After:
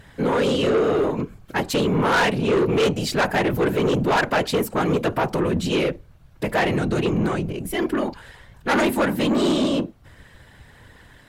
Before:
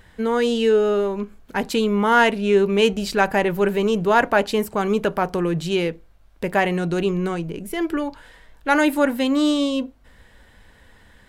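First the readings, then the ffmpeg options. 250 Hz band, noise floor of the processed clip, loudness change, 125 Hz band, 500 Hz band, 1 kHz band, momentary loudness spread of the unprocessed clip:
-0.5 dB, -50 dBFS, -1.0 dB, +3.5 dB, -1.5 dB, -2.0 dB, 10 LU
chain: -af "afftfilt=real='hypot(re,im)*cos(2*PI*random(0))':imag='hypot(re,im)*sin(2*PI*random(1))':win_size=512:overlap=0.75,asoftclip=type=tanh:threshold=0.0631,volume=2.82"

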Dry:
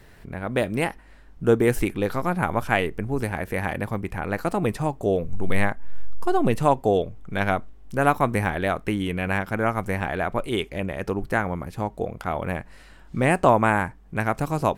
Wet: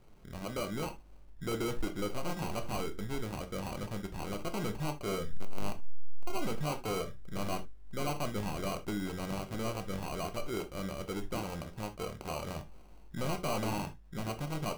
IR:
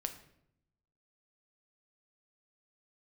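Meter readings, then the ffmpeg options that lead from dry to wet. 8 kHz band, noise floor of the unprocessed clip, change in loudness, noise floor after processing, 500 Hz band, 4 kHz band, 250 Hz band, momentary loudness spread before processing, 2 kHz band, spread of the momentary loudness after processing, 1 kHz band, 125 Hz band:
-3.0 dB, -48 dBFS, -13.0 dB, -52 dBFS, -14.0 dB, -5.0 dB, -12.0 dB, 9 LU, -17.5 dB, 7 LU, -15.0 dB, -11.5 dB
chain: -filter_complex "[0:a]aresample=11025,asoftclip=type=hard:threshold=0.0891,aresample=44100,acrusher=samples=25:mix=1:aa=0.000001[s0];[1:a]atrim=start_sample=2205,atrim=end_sample=4410,asetrate=52920,aresample=44100[s1];[s0][s1]afir=irnorm=-1:irlink=0,volume=0.422"

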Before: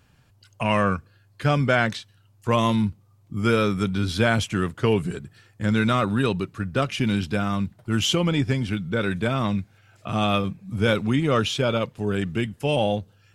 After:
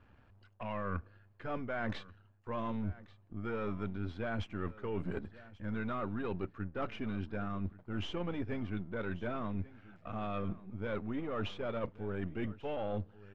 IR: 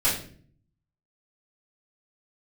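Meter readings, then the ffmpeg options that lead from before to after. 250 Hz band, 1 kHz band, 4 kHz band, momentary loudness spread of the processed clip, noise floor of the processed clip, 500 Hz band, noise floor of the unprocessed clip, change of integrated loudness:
-15.0 dB, -15.0 dB, -22.0 dB, 6 LU, -64 dBFS, -14.5 dB, -59 dBFS, -15.5 dB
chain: -af "aeval=exprs='if(lt(val(0),0),0.447*val(0),val(0))':c=same,lowpass=1800,equalizer=f=140:t=o:w=0.35:g=-15,areverse,acompressor=threshold=0.0178:ratio=12,areverse,aecho=1:1:1137:0.112,volume=1.19"

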